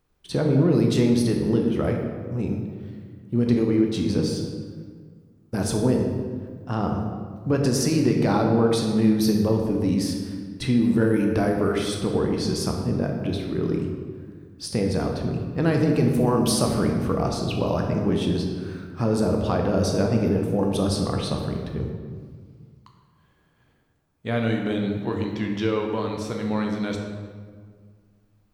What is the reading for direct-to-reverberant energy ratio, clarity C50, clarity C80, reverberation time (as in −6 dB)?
1.5 dB, 3.5 dB, 5.5 dB, 1.7 s